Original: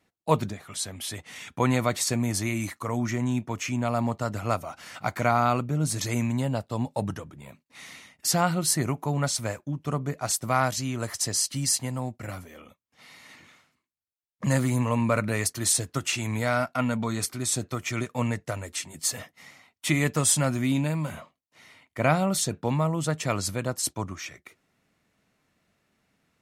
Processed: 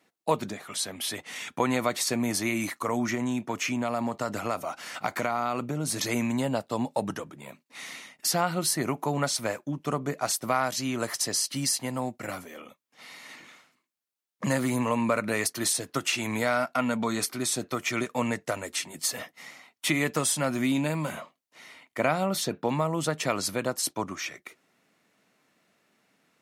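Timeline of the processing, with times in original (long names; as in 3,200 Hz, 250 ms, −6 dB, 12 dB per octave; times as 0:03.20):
0:03.14–0:05.99: downward compressor, threshold −24 dBFS
0:22.27–0:22.69: parametric band 8,400 Hz −6.5 dB 1.3 octaves
whole clip: high-pass filter 220 Hz 12 dB per octave; downward compressor 2.5 to 1, threshold −27 dBFS; dynamic equaliser 7,500 Hz, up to −5 dB, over −47 dBFS, Q 2.2; level +4 dB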